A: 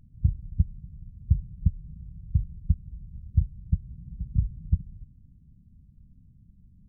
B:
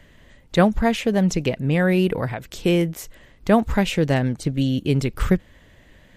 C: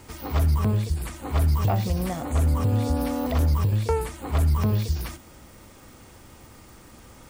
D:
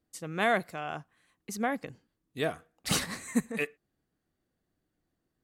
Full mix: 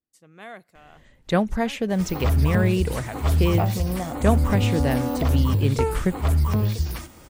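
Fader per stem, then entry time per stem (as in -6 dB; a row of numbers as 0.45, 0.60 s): off, -4.5 dB, +1.0 dB, -14.0 dB; off, 0.75 s, 1.90 s, 0.00 s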